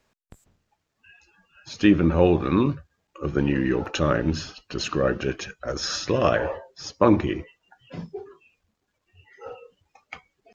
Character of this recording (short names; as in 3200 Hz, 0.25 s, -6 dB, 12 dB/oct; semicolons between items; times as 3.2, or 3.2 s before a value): noise floor -78 dBFS; spectral tilt -5.5 dB/oct